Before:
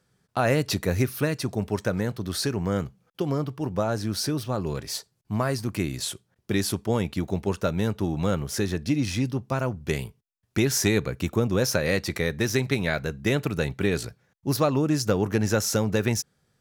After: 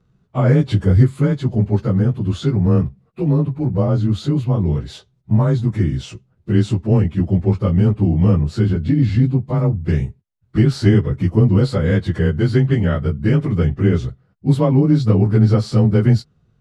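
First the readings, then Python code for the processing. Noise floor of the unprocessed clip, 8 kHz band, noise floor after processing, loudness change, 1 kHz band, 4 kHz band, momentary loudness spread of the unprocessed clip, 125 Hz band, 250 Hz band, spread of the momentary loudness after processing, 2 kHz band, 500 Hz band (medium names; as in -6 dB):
-73 dBFS, under -10 dB, -61 dBFS, +9.5 dB, +1.5 dB, -3.0 dB, 8 LU, +14.0 dB, +9.5 dB, 7 LU, -1.5 dB, +4.5 dB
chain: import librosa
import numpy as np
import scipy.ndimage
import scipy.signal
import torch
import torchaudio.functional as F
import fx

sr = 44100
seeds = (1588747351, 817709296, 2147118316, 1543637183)

y = fx.partial_stretch(x, sr, pct=92)
y = fx.riaa(y, sr, side='playback')
y = F.gain(torch.from_numpy(y), 3.5).numpy()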